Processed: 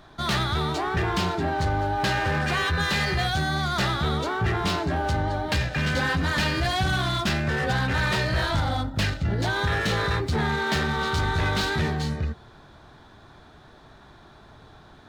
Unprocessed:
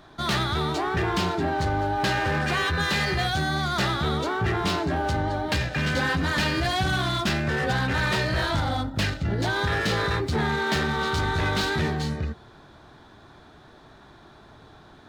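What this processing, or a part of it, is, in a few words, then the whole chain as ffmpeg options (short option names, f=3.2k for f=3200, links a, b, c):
low shelf boost with a cut just above: -filter_complex "[0:a]asettb=1/sr,asplit=3[a][b][c];[a]atrim=end=9.494[d];[b]atrim=start=9.49:end=10.03,asetpts=PTS-STARTPTS,afade=t=in:d=0.004:c=qsin,afade=t=out:st=0.536:d=0.004:c=qsin,bandreject=f=4.9k:w=13[e];[c]atrim=start=10.026[f];[d][e]acrossfade=d=0.004:c1=hsin:c2=qsin[g];[g][f]acrossfade=d=0.004:c1=qsin:c2=hsin,lowshelf=f=66:g=5,equalizer=f=320:t=o:w=0.77:g=-2.5"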